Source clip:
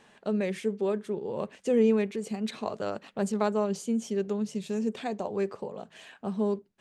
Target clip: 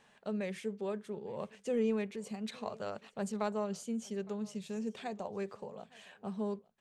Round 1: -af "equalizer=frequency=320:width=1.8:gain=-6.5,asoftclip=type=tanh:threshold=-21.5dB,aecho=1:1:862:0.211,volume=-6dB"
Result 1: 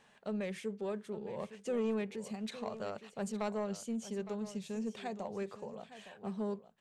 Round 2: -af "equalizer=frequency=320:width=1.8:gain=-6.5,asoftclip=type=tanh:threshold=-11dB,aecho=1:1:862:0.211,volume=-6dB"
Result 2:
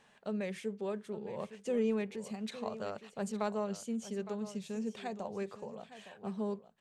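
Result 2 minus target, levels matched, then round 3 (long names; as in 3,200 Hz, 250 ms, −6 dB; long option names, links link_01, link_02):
echo-to-direct +10 dB
-af "equalizer=frequency=320:width=1.8:gain=-6.5,asoftclip=type=tanh:threshold=-11dB,aecho=1:1:862:0.0668,volume=-6dB"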